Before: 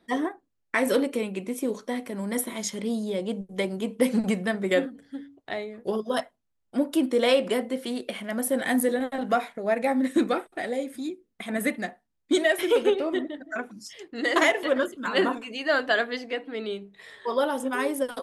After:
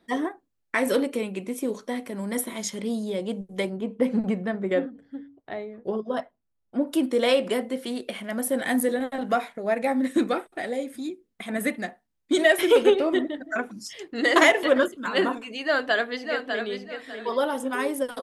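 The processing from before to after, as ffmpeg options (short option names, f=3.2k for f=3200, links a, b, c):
-filter_complex "[0:a]asplit=3[a][b][c];[a]afade=t=out:st=3.69:d=0.02[d];[b]lowpass=f=1.2k:p=1,afade=t=in:st=3.69:d=0.02,afade=t=out:st=6.86:d=0.02[e];[c]afade=t=in:st=6.86:d=0.02[f];[d][e][f]amix=inputs=3:normalize=0,asplit=2[g][h];[h]afade=t=in:st=15.63:d=0.01,afade=t=out:st=16.69:d=0.01,aecho=0:1:600|1200|1800:0.473151|0.118288|0.029572[i];[g][i]amix=inputs=2:normalize=0,asplit=3[j][k][l];[j]atrim=end=12.392[m];[k]atrim=start=12.388:end=14.882,asetpts=PTS-STARTPTS,volume=4dB[n];[l]atrim=start=14.878[o];[m][n]acrossfade=d=0.004:c1=hsin:c2=hsin[p];[p][o]acrossfade=d=0.004:c1=hsin:c2=hsin"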